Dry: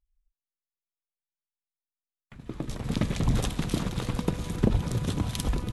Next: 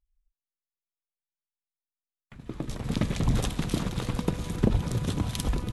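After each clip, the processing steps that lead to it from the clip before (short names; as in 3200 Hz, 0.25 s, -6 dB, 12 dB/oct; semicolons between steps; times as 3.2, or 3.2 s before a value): nothing audible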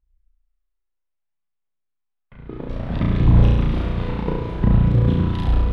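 phaser 0.6 Hz, delay 2.4 ms, feedback 43%; air absorption 400 m; flutter echo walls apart 5.9 m, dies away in 1.2 s; gain +2.5 dB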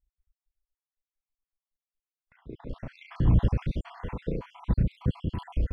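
random spectral dropouts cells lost 62%; gain -7 dB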